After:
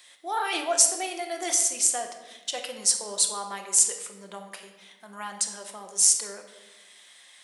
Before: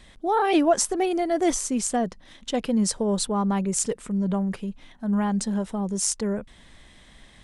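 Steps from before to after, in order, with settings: high-pass 460 Hz 12 dB/octave; tilt EQ +4 dB/octave; simulated room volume 620 m³, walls mixed, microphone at 0.91 m; trim -5.5 dB

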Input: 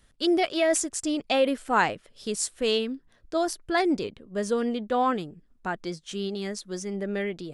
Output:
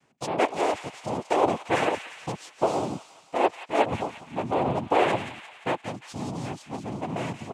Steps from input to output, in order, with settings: low-pass 2.8 kHz 12 dB/octave; low-pass that closes with the level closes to 2.2 kHz, closed at -23.5 dBFS; comb 1.5 ms, depth 85%; saturation -24 dBFS, distortion -8 dB; small resonant body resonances 310/500/720 Hz, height 10 dB, ringing for 40 ms; noise-vocoded speech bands 4; feedback echo behind a high-pass 175 ms, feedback 55%, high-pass 1.8 kHz, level -7 dB; trim -1.5 dB

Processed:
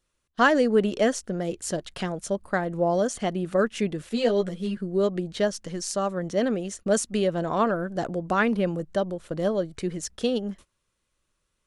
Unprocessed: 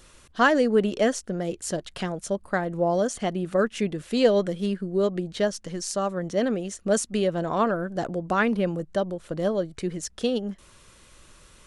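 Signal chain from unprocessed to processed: gate -43 dBFS, range -24 dB; 4.09–4.77 s: three-phase chorus

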